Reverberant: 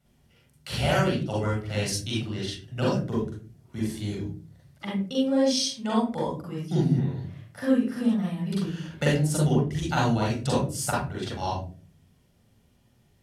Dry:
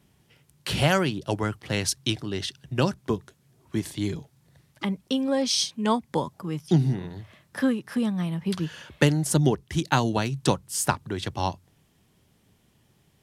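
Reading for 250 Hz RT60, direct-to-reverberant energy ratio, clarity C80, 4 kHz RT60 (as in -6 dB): 0.65 s, -5.0 dB, 7.5 dB, 0.25 s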